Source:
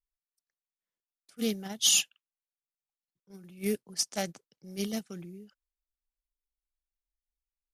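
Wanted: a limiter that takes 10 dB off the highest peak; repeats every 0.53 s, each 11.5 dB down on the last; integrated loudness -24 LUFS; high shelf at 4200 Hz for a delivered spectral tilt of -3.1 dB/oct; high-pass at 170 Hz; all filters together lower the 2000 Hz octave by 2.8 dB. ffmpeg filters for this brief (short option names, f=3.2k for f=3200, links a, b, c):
-af "highpass=170,equalizer=f=2k:t=o:g=-5.5,highshelf=f=4.2k:g=3,alimiter=limit=-20dB:level=0:latency=1,aecho=1:1:530|1060|1590:0.266|0.0718|0.0194,volume=11dB"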